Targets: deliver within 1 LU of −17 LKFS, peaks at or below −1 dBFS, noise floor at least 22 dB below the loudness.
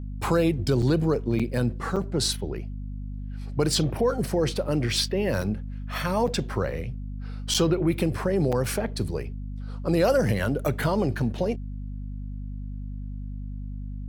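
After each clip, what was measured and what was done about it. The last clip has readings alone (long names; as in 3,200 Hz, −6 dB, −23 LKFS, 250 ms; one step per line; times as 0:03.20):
number of dropouts 7; longest dropout 6.0 ms; mains hum 50 Hz; hum harmonics up to 250 Hz; level of the hum −31 dBFS; integrated loudness −26.0 LKFS; sample peak −10.0 dBFS; target loudness −17.0 LKFS
→ repair the gap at 0:00.82/0:01.39/0:01.96/0:05.42/0:06.27/0:07.54/0:08.52, 6 ms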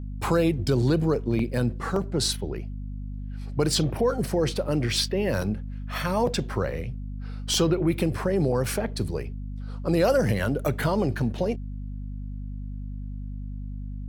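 number of dropouts 0; mains hum 50 Hz; hum harmonics up to 250 Hz; level of the hum −31 dBFS
→ mains-hum notches 50/100/150/200/250 Hz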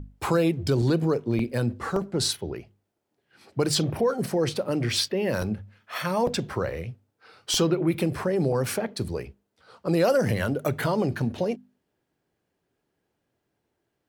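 mains hum none found; integrated loudness −26.0 LKFS; sample peak −11.0 dBFS; target loudness −17.0 LKFS
→ level +9 dB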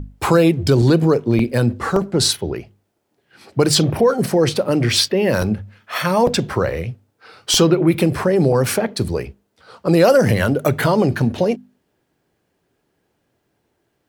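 integrated loudness −17.0 LKFS; sample peak −2.0 dBFS; background noise floor −70 dBFS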